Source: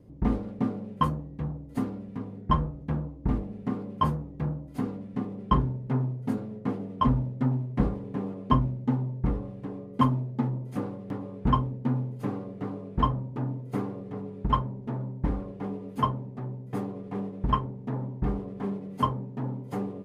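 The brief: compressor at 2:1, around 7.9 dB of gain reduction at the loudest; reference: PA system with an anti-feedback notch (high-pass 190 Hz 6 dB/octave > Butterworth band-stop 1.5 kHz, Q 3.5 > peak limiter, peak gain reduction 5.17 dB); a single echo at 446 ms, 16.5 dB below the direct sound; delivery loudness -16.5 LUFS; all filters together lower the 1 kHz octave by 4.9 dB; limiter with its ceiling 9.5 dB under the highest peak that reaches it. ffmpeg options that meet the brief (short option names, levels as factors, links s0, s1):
-af "equalizer=f=1000:t=o:g=-5,acompressor=threshold=0.02:ratio=2,alimiter=level_in=1.33:limit=0.0631:level=0:latency=1,volume=0.75,highpass=f=190:p=1,asuperstop=centerf=1500:order=8:qfactor=3.5,aecho=1:1:446:0.15,volume=18.8,alimiter=limit=0.501:level=0:latency=1"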